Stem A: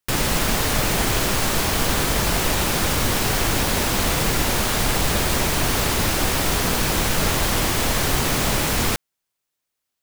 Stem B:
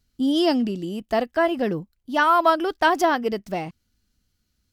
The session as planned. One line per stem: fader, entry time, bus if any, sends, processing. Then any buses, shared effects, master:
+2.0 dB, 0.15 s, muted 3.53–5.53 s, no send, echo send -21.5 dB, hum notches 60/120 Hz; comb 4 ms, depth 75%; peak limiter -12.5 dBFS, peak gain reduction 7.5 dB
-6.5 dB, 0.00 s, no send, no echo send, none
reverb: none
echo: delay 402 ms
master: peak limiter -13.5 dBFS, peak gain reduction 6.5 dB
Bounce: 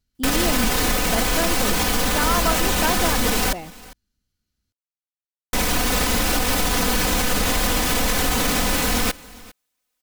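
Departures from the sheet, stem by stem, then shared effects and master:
stem A: missing hum notches 60/120 Hz; master: missing peak limiter -13.5 dBFS, peak gain reduction 6.5 dB

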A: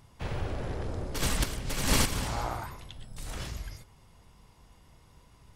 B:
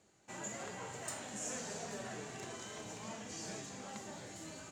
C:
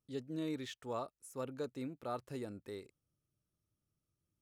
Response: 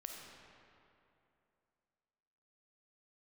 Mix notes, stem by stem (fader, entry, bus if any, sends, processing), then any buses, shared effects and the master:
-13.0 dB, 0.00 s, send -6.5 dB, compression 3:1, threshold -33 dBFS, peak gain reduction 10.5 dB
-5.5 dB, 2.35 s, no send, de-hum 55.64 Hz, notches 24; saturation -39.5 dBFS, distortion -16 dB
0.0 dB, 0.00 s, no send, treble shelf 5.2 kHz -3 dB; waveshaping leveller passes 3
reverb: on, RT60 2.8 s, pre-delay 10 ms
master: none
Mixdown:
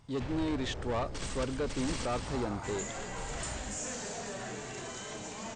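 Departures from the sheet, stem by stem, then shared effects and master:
stem A -13.0 dB -> -5.0 dB; stem B -5.5 dB -> +6.5 dB; master: extra brick-wall FIR low-pass 9.1 kHz

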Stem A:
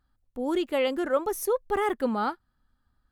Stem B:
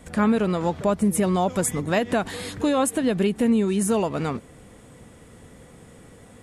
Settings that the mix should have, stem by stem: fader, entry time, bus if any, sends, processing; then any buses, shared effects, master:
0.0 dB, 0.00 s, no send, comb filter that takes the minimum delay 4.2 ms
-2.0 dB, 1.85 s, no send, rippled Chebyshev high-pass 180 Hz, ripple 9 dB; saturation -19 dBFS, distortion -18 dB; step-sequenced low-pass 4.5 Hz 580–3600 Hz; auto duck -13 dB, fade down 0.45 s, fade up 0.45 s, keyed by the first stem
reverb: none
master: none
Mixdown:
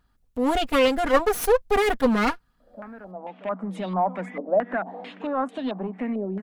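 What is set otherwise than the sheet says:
stem A 0.0 dB -> +7.0 dB; stem B: entry 1.85 s -> 2.60 s

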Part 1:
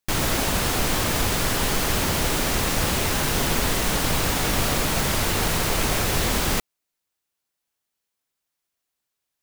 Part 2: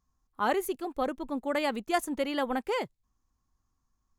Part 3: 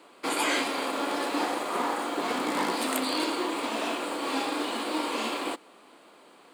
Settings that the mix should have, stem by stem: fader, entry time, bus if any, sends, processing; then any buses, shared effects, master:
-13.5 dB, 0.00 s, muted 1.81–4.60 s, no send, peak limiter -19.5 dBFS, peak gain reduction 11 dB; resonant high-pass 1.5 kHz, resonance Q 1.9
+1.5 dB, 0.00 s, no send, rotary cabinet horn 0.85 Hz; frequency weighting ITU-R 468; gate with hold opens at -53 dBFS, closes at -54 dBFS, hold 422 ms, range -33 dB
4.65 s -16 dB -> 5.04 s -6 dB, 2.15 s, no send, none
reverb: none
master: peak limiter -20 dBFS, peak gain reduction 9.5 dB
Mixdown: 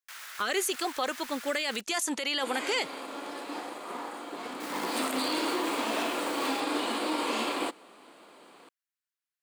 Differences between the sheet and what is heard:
stem 2 +1.5 dB -> +11.5 dB; stem 3 -16.0 dB -> -9.5 dB

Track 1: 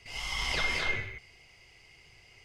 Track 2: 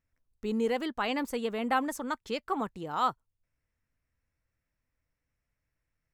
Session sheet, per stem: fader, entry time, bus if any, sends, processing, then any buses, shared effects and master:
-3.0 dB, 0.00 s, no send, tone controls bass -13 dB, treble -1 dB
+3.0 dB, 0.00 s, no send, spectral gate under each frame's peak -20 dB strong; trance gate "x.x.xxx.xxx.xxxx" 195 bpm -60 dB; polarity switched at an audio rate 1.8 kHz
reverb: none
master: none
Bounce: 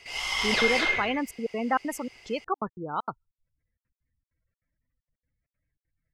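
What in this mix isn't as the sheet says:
stem 1 -3.0 dB -> +6.0 dB; stem 2: missing polarity switched at an audio rate 1.8 kHz

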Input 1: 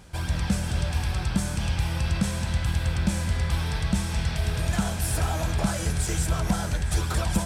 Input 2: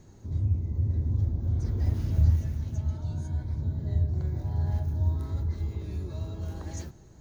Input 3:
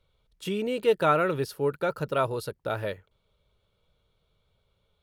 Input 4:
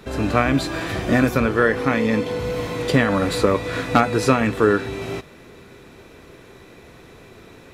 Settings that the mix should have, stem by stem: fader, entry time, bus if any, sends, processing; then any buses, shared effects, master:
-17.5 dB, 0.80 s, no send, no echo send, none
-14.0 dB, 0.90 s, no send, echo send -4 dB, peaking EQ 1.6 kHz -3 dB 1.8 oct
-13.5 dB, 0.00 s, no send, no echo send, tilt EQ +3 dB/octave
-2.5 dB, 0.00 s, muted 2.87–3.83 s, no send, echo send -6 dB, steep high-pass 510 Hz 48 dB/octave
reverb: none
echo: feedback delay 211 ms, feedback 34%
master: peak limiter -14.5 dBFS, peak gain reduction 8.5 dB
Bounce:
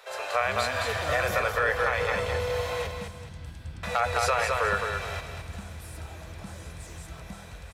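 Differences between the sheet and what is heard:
stem 2: entry 0.90 s -> 0.10 s; stem 3: missing tilt EQ +3 dB/octave

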